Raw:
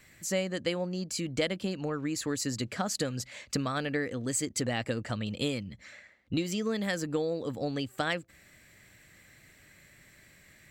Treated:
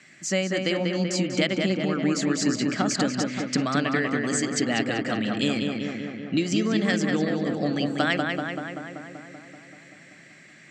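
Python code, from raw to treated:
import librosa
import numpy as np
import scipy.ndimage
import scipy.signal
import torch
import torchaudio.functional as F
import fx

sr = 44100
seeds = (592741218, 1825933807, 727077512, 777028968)

y = fx.cabinet(x, sr, low_hz=160.0, low_slope=24, high_hz=7100.0, hz=(480.0, 970.0, 3900.0), db=(-9, -7, -4))
y = fx.echo_filtered(y, sr, ms=192, feedback_pct=72, hz=3000.0, wet_db=-3.0)
y = y * 10.0 ** (7.5 / 20.0)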